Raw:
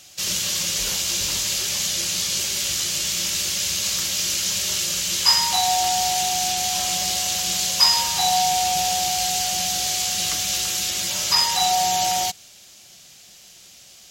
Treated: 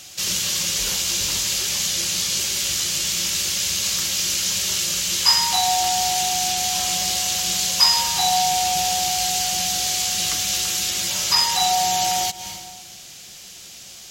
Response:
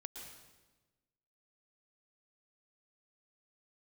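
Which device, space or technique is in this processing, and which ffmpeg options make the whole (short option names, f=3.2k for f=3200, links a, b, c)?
ducked reverb: -filter_complex "[0:a]equalizer=f=610:w=7.7:g=-4,asplit=3[a][b][c];[1:a]atrim=start_sample=2205[d];[b][d]afir=irnorm=-1:irlink=0[e];[c]apad=whole_len=622086[f];[e][f]sidechaincompress=threshold=-42dB:ratio=6:attack=21:release=145,volume=6dB[g];[a][g]amix=inputs=2:normalize=0"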